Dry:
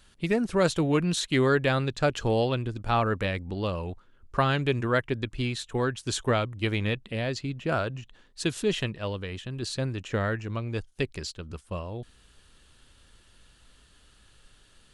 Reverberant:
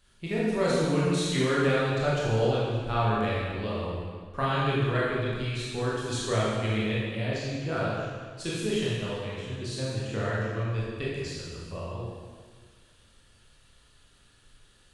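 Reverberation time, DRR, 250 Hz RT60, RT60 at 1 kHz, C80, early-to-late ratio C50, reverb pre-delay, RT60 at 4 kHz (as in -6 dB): 1.7 s, -7.5 dB, 1.7 s, 1.7 s, 0.0 dB, -2.5 dB, 18 ms, 1.6 s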